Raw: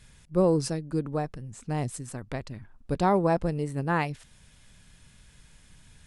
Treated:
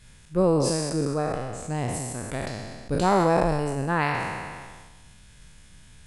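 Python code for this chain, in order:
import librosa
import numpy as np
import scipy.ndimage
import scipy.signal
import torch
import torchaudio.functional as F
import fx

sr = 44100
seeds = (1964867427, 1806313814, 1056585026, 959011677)

y = fx.spec_trails(x, sr, decay_s=1.57)
y = fx.high_shelf(y, sr, hz=8000.0, db=8.0, at=(2.92, 3.7))
y = fx.sustainer(y, sr, db_per_s=30.0)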